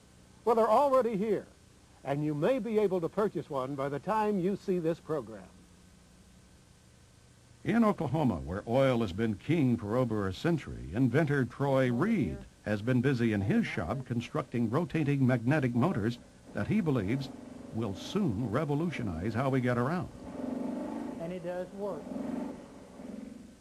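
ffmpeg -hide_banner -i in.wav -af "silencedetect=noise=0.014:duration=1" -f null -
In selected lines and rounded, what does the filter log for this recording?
silence_start: 5.40
silence_end: 7.65 | silence_duration: 2.26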